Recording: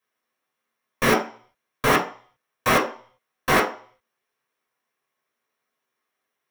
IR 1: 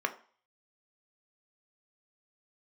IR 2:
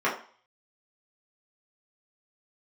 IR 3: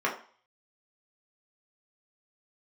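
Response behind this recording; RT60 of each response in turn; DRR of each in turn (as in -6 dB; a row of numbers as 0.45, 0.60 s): 3; 0.45, 0.45, 0.45 s; 6.5, -7.5, -3.5 dB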